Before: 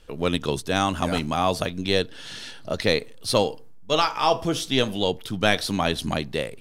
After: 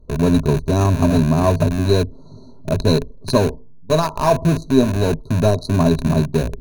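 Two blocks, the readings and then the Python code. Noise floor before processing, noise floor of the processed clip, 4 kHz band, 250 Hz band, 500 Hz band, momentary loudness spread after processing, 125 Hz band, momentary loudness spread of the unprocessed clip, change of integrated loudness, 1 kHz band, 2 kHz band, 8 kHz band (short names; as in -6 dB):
-41 dBFS, -39 dBFS, -4.0 dB, +10.0 dB, +6.0 dB, 5 LU, +14.0 dB, 6 LU, +6.5 dB, +1.5 dB, -3.0 dB, +1.5 dB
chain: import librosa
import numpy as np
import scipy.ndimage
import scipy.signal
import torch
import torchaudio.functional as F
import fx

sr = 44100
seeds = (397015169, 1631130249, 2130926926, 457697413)

p1 = fx.wiener(x, sr, points=25)
p2 = fx.brickwall_bandstop(p1, sr, low_hz=1400.0, high_hz=3800.0)
p3 = fx.low_shelf(p2, sr, hz=400.0, db=11.5)
p4 = fx.schmitt(p3, sr, flips_db=-22.5)
p5 = p3 + (p4 * 10.0 ** (-3.0 / 20.0))
p6 = fx.ripple_eq(p5, sr, per_octave=1.5, db=12)
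y = p6 * 10.0 ** (-2.0 / 20.0)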